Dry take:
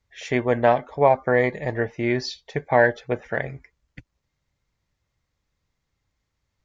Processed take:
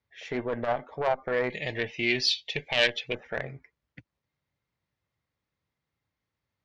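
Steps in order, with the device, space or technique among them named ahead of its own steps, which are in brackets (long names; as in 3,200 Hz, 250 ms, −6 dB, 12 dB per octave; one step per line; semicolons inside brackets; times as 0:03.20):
valve radio (band-pass filter 100–4,200 Hz; tube saturation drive 13 dB, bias 0.4; saturating transformer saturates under 360 Hz)
0:01.50–0:03.15: high shelf with overshoot 1,900 Hz +13 dB, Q 3
level −3.5 dB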